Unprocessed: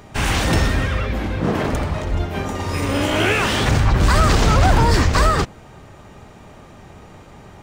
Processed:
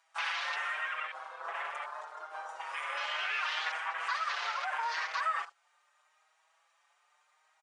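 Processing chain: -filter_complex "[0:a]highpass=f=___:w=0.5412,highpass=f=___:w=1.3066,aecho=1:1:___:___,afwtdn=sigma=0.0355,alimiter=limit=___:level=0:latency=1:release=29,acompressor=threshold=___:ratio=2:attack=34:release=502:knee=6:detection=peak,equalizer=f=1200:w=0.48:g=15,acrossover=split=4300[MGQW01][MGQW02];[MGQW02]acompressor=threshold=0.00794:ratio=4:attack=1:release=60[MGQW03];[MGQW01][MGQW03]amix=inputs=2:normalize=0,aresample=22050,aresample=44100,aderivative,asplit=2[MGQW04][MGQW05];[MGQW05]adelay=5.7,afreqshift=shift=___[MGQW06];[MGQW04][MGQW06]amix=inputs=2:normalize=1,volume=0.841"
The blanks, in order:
550, 550, 72, 0.158, 0.178, 0.0355, 0.77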